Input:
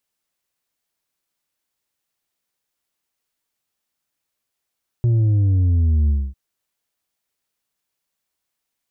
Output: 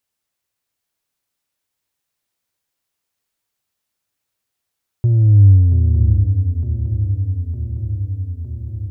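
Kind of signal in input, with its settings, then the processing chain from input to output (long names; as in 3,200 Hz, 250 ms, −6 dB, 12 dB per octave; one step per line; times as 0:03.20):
bass drop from 120 Hz, over 1.30 s, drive 4.5 dB, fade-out 0.25 s, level −14 dB
parametric band 100 Hz +9.5 dB 0.27 octaves
on a send: feedback echo with a long and a short gap by turns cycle 909 ms, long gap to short 3 to 1, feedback 66%, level −8.5 dB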